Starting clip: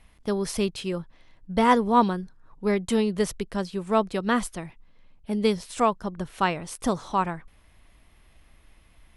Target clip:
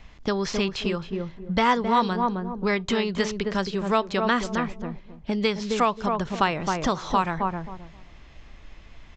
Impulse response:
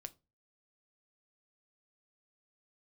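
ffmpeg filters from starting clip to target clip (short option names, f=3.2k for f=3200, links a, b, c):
-filter_complex "[0:a]aresample=16000,aresample=44100,asplit=2[a][b];[b]adelay=265,lowpass=f=900:p=1,volume=-6dB,asplit=2[c][d];[d]adelay=265,lowpass=f=900:p=1,volume=0.21,asplit=2[e][f];[f]adelay=265,lowpass=f=900:p=1,volume=0.21[g];[a][c][e][g]amix=inputs=4:normalize=0,asplit=2[h][i];[1:a]atrim=start_sample=2205,asetrate=48510,aresample=44100[j];[i][j]afir=irnorm=-1:irlink=0,volume=-4dB[k];[h][k]amix=inputs=2:normalize=0,acrossover=split=940|2600|6100[l][m][n][o];[l]acompressor=threshold=-31dB:ratio=4[p];[m]acompressor=threshold=-29dB:ratio=4[q];[n]acompressor=threshold=-40dB:ratio=4[r];[o]acompressor=threshold=-57dB:ratio=4[s];[p][q][r][s]amix=inputs=4:normalize=0,volume=6dB"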